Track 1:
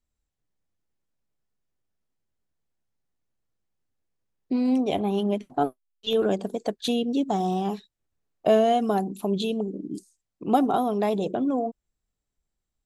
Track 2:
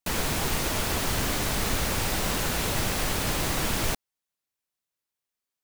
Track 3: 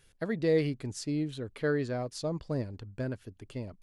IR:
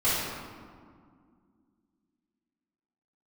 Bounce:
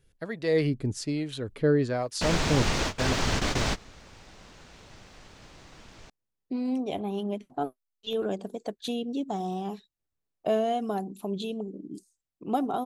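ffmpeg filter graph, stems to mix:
-filter_complex "[0:a]adelay=2000,volume=-6.5dB[a];[1:a]lowpass=f=6.8k:w=0.5412,lowpass=f=6.8k:w=1.3066,aeval=exprs='sgn(val(0))*max(abs(val(0))-0.00447,0)':c=same,adelay=2150,volume=2dB[b];[2:a]dynaudnorm=f=200:g=5:m=7.5dB,acrossover=split=540[c][d];[c]aeval=exprs='val(0)*(1-0.7/2+0.7/2*cos(2*PI*1.2*n/s))':c=same[e];[d]aeval=exprs='val(0)*(1-0.7/2-0.7/2*cos(2*PI*1.2*n/s))':c=same[f];[e][f]amix=inputs=2:normalize=0,volume=1dB,asplit=2[g][h];[h]apad=whole_len=343538[i];[b][i]sidechaingate=range=-24dB:threshold=-44dB:ratio=16:detection=peak[j];[a][j][g]amix=inputs=3:normalize=0"

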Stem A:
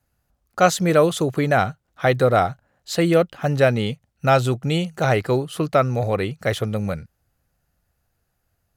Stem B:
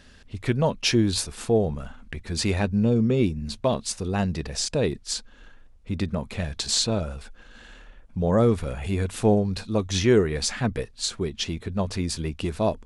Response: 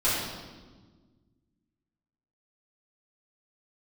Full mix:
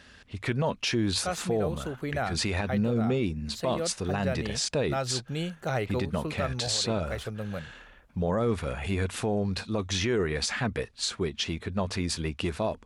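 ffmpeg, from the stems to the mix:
-filter_complex "[0:a]adelay=650,volume=-9.5dB[a];[1:a]equalizer=f=1.7k:w=0.42:g=6,volume=-3dB,asplit=2[b][c];[c]apad=whole_len=415103[d];[a][d]sidechaincompress=threshold=-26dB:ratio=4:attack=31:release=1150[e];[e][b]amix=inputs=2:normalize=0,highpass=48,alimiter=limit=-18.5dB:level=0:latency=1:release=52"

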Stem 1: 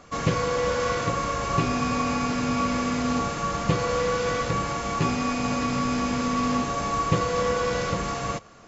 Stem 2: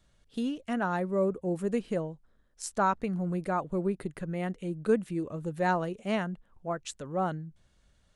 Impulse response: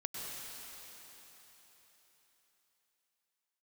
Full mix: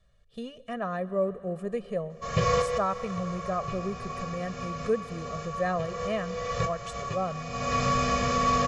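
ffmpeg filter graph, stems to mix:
-filter_complex "[0:a]adelay=2100,volume=-2dB,asplit=2[a][b];[b]volume=-23dB[c];[1:a]aemphasis=mode=reproduction:type=cd,volume=-4.5dB,asplit=3[d][e][f];[e]volume=-16dB[g];[f]apad=whole_len=475221[h];[a][h]sidechaincompress=threshold=-52dB:ratio=5:attack=6:release=328[i];[2:a]atrim=start_sample=2205[j];[c][g]amix=inputs=2:normalize=0[k];[k][j]afir=irnorm=-1:irlink=0[l];[i][d][l]amix=inputs=3:normalize=0,aecho=1:1:1.7:0.96"

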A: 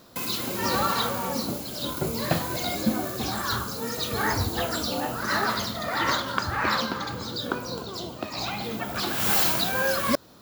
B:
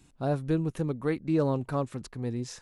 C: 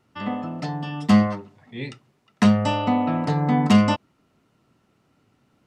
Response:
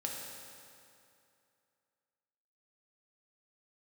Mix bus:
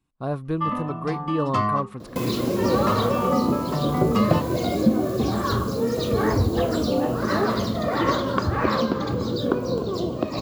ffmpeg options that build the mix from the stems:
-filter_complex "[0:a]lowshelf=f=710:t=q:w=1.5:g=10.5,adelay=2000,volume=2dB[a];[1:a]agate=range=-17dB:threshold=-52dB:ratio=16:detection=peak,equalizer=f=6.9k:w=1.3:g=-8,volume=0.5dB[b];[2:a]equalizer=f=1.2k:t=o:w=0.22:g=11.5,asplit=2[c][d];[d]adelay=2.1,afreqshift=1.4[e];[c][e]amix=inputs=2:normalize=1,adelay=450,volume=0.5dB[f];[a][f]amix=inputs=2:normalize=0,highshelf=f=7.5k:g=-7.5,acompressor=threshold=-27dB:ratio=1.5,volume=0dB[g];[b][g]amix=inputs=2:normalize=0,equalizer=f=1.1k:t=o:w=0.21:g=12"

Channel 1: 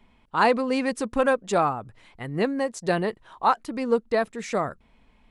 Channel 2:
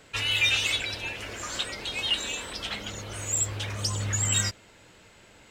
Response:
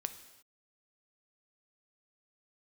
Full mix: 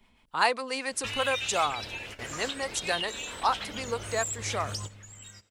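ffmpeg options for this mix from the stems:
-filter_complex "[0:a]acrossover=split=500[a][b];[a]acompressor=threshold=-48dB:ratio=2[c];[c][b]amix=inputs=2:normalize=0,acrossover=split=550[d][e];[d]aeval=exprs='val(0)*(1-0.5/2+0.5/2*cos(2*PI*7.7*n/s))':c=same[f];[e]aeval=exprs='val(0)*(1-0.5/2-0.5/2*cos(2*PI*7.7*n/s))':c=same[g];[f][g]amix=inputs=2:normalize=0,highshelf=f=2.7k:g=11.5,volume=-3dB,asplit=2[h][i];[1:a]acompressor=threshold=-32dB:ratio=2.5,adelay=900,volume=-2.5dB,asplit=2[j][k];[k]volume=-22dB[l];[i]apad=whole_len=282441[m];[j][m]sidechaingate=range=-17dB:threshold=-55dB:ratio=16:detection=peak[n];[2:a]atrim=start_sample=2205[o];[l][o]afir=irnorm=-1:irlink=0[p];[h][n][p]amix=inputs=3:normalize=0"

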